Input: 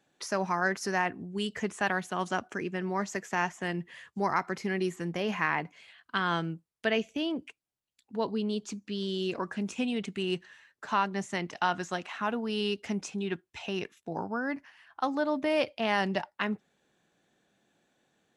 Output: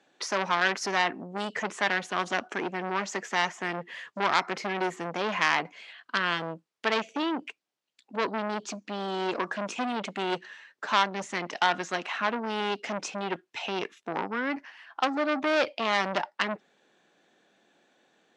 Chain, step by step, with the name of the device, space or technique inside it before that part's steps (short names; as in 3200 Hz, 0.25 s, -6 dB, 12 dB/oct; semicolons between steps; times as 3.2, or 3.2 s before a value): public-address speaker with an overloaded transformer (core saturation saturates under 2900 Hz; BPF 270–5900 Hz); gain +7.5 dB